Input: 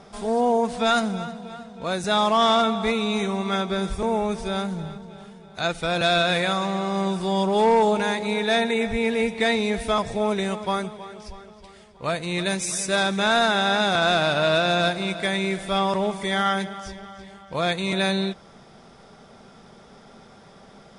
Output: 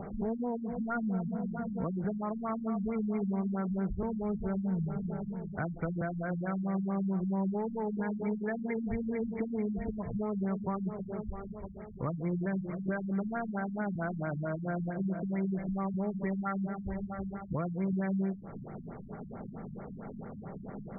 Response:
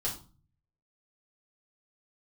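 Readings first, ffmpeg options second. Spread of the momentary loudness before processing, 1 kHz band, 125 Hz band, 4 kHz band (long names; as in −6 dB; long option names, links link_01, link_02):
14 LU, −17.0 dB, −3.0 dB, below −40 dB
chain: -filter_complex "[0:a]lowshelf=frequency=390:gain=11,acompressor=mode=upward:threshold=-39dB:ratio=2.5,asplit=2[link_01][link_02];[1:a]atrim=start_sample=2205,afade=type=out:start_time=0.22:duration=0.01,atrim=end_sample=10143[link_03];[link_02][link_03]afir=irnorm=-1:irlink=0,volume=-19.5dB[link_04];[link_01][link_04]amix=inputs=2:normalize=0,acompressor=threshold=-28dB:ratio=6,lowshelf=frequency=81:gain=-8,acrossover=split=390|920[link_05][link_06][link_07];[link_06]alimiter=level_in=14dB:limit=-24dB:level=0:latency=1:release=118,volume=-14dB[link_08];[link_05][link_08][link_07]amix=inputs=3:normalize=0,afftfilt=real='re*lt(b*sr/1024,240*pow(2400/240,0.5+0.5*sin(2*PI*4.5*pts/sr)))':imag='im*lt(b*sr/1024,240*pow(2400/240,0.5+0.5*sin(2*PI*4.5*pts/sr)))':win_size=1024:overlap=0.75"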